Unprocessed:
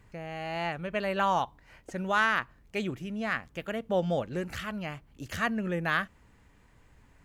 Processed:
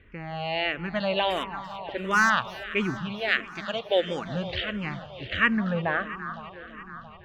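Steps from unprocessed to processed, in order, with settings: low-pass opened by the level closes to 2700 Hz, open at -24.5 dBFS; 3.28–4.25 tone controls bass -10 dB, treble +13 dB; low-pass sweep 3600 Hz -> 160 Hz, 5.3–7.11; 1.3–2.3 overloaded stage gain 18.5 dB; echo with dull and thin repeats by turns 0.169 s, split 1100 Hz, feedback 83%, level -13 dB; endless phaser -1.5 Hz; gain +6 dB

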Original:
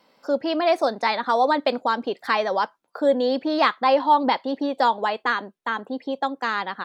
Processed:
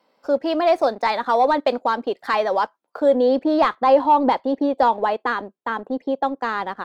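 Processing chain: HPF 610 Hz 6 dB/oct; sample leveller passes 1; tilt shelf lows +6 dB, from 3.14 s lows +10 dB

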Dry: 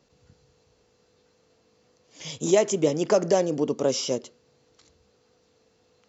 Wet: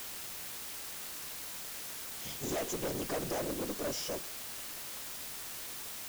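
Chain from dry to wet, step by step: whisperiser; tube stage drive 25 dB, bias 0.5; requantised 6-bit, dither triangular; gain -7 dB

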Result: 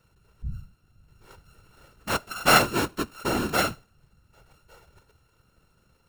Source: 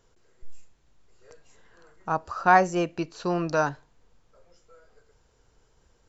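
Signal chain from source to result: sample sorter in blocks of 32 samples; whisperiser

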